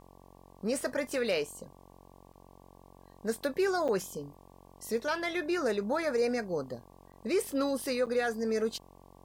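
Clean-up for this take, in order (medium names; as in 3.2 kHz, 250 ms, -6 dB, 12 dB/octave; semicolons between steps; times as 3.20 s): de-hum 45.8 Hz, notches 25; interpolate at 2.33/3.88/7.12/8.06 s, 7.3 ms; expander -48 dBFS, range -21 dB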